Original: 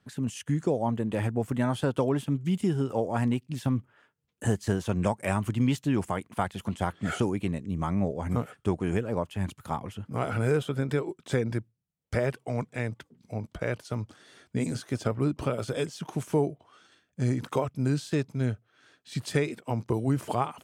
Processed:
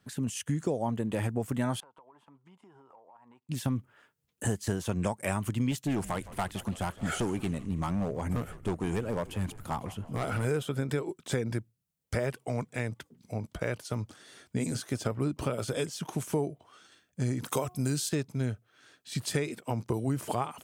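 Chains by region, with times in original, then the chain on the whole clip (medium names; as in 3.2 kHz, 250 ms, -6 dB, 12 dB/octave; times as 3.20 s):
1.80–3.49 s: band-pass filter 960 Hz, Q 5.1 + compression 16:1, threshold -52 dBFS
5.71–10.45 s: overload inside the chain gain 22.5 dB + frequency-shifting echo 164 ms, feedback 60%, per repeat -86 Hz, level -18 dB + tape noise reduction on one side only decoder only
17.45–18.09 s: treble shelf 4.8 kHz +12 dB + de-hum 361.8 Hz, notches 4
whole clip: treble shelf 6.3 kHz +8.5 dB; compression 2:1, threshold -28 dBFS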